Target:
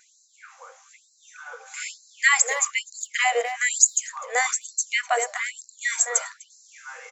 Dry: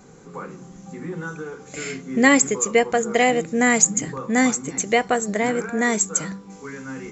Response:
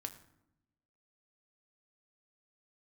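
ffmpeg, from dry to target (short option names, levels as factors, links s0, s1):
-filter_complex "[0:a]asplit=2[s0][s1];[s1]adelay=250,highpass=300,lowpass=3400,asoftclip=type=hard:threshold=0.335,volume=0.316[s2];[s0][s2]amix=inputs=2:normalize=0,afftfilt=real='re*gte(b*sr/1024,440*pow(4000/440,0.5+0.5*sin(2*PI*1.1*pts/sr)))':imag='im*gte(b*sr/1024,440*pow(4000/440,0.5+0.5*sin(2*PI*1.1*pts/sr)))':win_size=1024:overlap=0.75"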